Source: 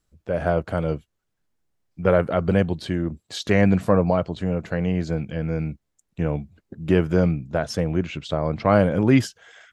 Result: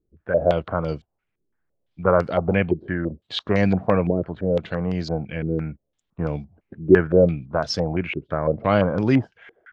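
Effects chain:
low-pass on a step sequencer 5.9 Hz 380–4,900 Hz
level −2 dB

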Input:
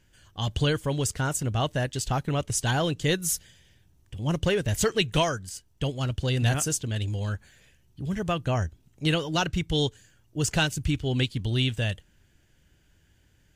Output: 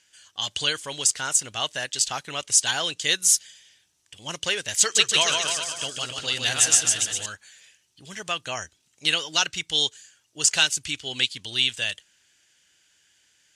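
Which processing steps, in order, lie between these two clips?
meter weighting curve ITU-R 468
0:04.80–0:07.26: bouncing-ball delay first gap 150 ms, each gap 0.9×, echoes 5
level −1 dB

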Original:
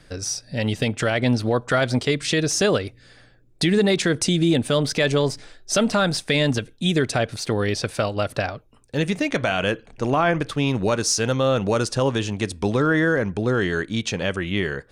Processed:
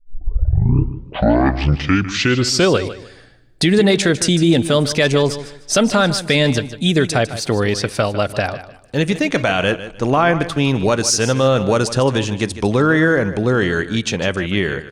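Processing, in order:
turntable start at the beginning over 2.92 s
repeating echo 152 ms, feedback 26%, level −13.5 dB
level +5 dB

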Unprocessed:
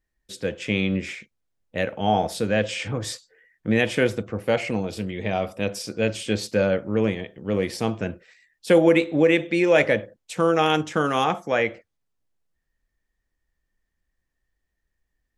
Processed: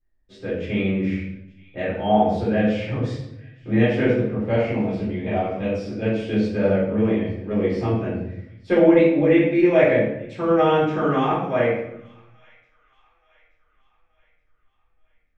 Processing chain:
head-to-tape spacing loss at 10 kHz 29 dB
delay with a high-pass on its return 876 ms, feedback 48%, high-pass 1,700 Hz, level −23 dB
rectangular room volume 190 cubic metres, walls mixed, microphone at 3.8 metres
level −8.5 dB

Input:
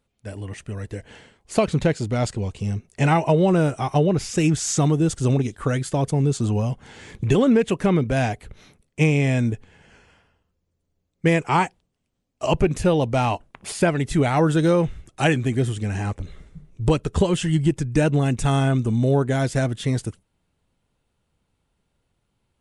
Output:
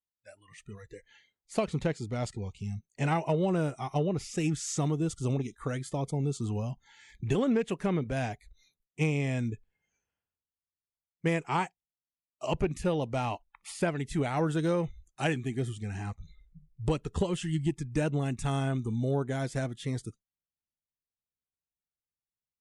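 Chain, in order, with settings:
harmonic generator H 3 −25 dB, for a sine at −7 dBFS
noise reduction from a noise print of the clip's start 23 dB
level −9 dB

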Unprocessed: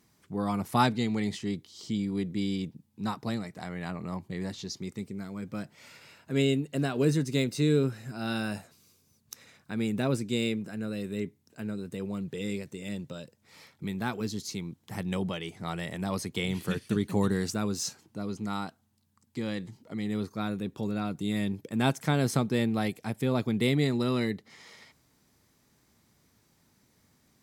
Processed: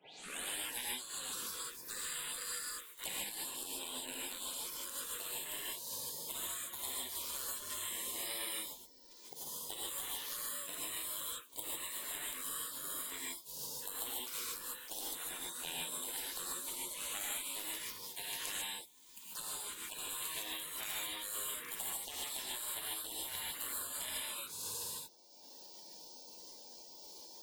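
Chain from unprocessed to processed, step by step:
turntable start at the beginning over 0.47 s
drawn EQ curve 100 Hz 0 dB, 170 Hz −21 dB, 280 Hz −23 dB, 520 Hz −16 dB, 810 Hz −27 dB, 1,200 Hz +13 dB, 2,800 Hz +9 dB, 5,200 Hz −16 dB, 7,900 Hz +4 dB, 13,000 Hz +9 dB
downward compressor 6 to 1, threshold −38 dBFS, peak gain reduction 22.5 dB
gate on every frequency bin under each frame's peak −30 dB weak
on a send: backwards echo 61 ms −22 dB
on the sum: reverb whose tail is shaped and stops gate 170 ms rising, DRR −5.5 dB
multiband upward and downward compressor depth 70%
level +15 dB

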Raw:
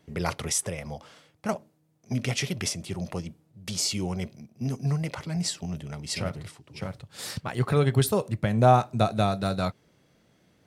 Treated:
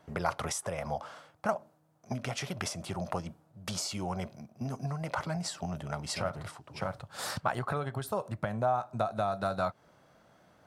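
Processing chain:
downward compressor 20 to 1, threshold −30 dBFS, peak gain reduction 18.5 dB
flat-topped bell 950 Hz +10.5 dB
level −2 dB

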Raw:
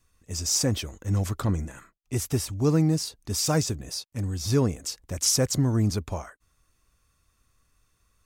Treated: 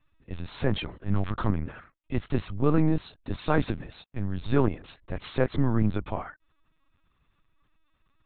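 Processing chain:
0:03.51–0:04.13: one scale factor per block 5 bits
dynamic equaliser 1,300 Hz, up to +5 dB, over −47 dBFS, Q 1.1
linear-prediction vocoder at 8 kHz pitch kept

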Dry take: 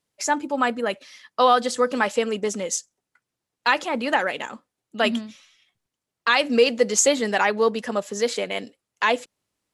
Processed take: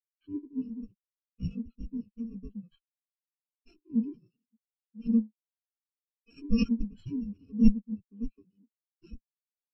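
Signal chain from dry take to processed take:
samples in bit-reversed order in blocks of 64 samples
downsampling to 11,025 Hz
harmonic generator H 3 −27 dB, 4 −20 dB, 6 −7 dB, 7 −7 dB, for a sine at −11.5 dBFS
every bin expanded away from the loudest bin 4 to 1

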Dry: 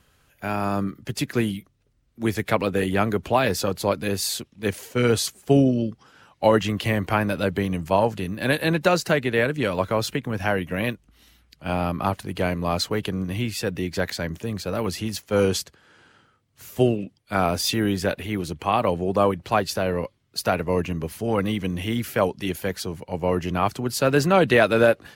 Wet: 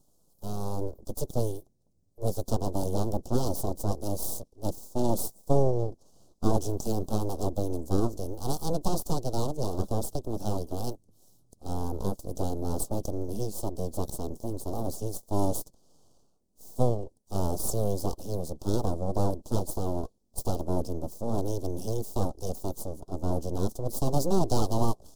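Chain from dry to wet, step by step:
full-wave rectification
Chebyshev band-stop filter 630–6,200 Hz, order 2
level −1.5 dB

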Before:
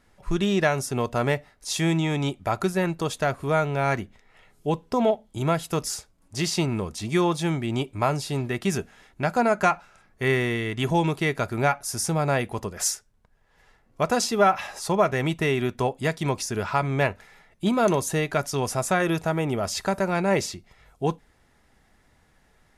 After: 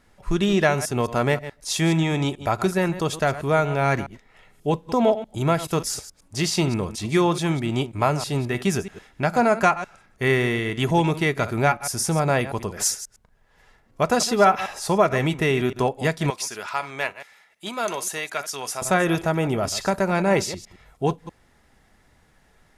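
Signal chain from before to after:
delay that plays each chunk backwards 107 ms, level −13.5 dB
0:16.30–0:18.82: high-pass filter 1,500 Hz 6 dB per octave
level +2.5 dB

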